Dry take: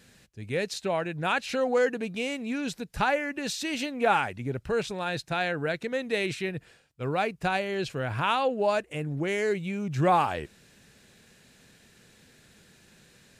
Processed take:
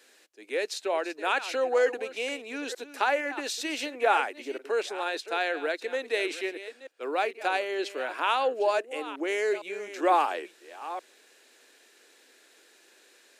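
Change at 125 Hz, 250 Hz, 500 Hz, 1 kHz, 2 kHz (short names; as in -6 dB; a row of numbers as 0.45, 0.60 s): under -35 dB, -6.0 dB, 0.0 dB, 0.0 dB, 0.0 dB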